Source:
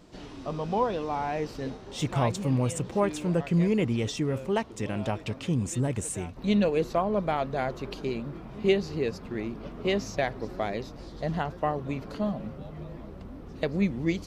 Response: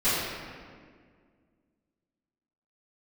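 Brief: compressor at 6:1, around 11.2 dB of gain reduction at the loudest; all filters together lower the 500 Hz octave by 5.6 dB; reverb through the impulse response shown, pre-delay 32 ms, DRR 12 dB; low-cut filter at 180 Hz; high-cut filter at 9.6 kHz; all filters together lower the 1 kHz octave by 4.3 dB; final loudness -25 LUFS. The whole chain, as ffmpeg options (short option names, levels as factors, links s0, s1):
-filter_complex "[0:a]highpass=180,lowpass=9600,equalizer=f=500:t=o:g=-6.5,equalizer=f=1000:t=o:g=-3,acompressor=threshold=0.0178:ratio=6,asplit=2[s0][s1];[1:a]atrim=start_sample=2205,adelay=32[s2];[s1][s2]afir=irnorm=-1:irlink=0,volume=0.0473[s3];[s0][s3]amix=inputs=2:normalize=0,volume=5.62"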